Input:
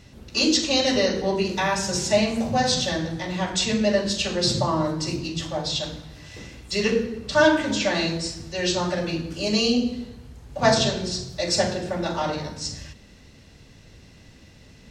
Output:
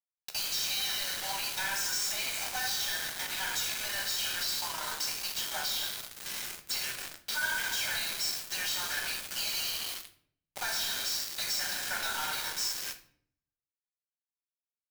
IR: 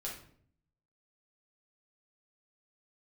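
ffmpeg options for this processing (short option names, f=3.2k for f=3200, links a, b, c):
-filter_complex "[0:a]alimiter=limit=-17dB:level=0:latency=1:release=13,highpass=f=1.2k:w=0.5412,highpass=f=1.2k:w=1.3066,asoftclip=type=hard:threshold=-26dB,acompressor=threshold=-38dB:ratio=20,asoftclip=type=tanh:threshold=-38dB,aecho=1:1:1.3:0.74,asplit=7[a][b][c][d][e][f][g];[b]adelay=141,afreqshift=38,volume=-14dB[h];[c]adelay=282,afreqshift=76,volume=-19.2dB[i];[d]adelay=423,afreqshift=114,volume=-24.4dB[j];[e]adelay=564,afreqshift=152,volume=-29.6dB[k];[f]adelay=705,afreqshift=190,volume=-34.8dB[l];[g]adelay=846,afreqshift=228,volume=-40dB[m];[a][h][i][j][k][l][m]amix=inputs=7:normalize=0,acrusher=bits=6:mix=0:aa=0.000001,asplit=2[n][o];[1:a]atrim=start_sample=2205,highshelf=f=8.1k:g=8[p];[o][p]afir=irnorm=-1:irlink=0,volume=-3dB[q];[n][q]amix=inputs=2:normalize=0,volume=3.5dB"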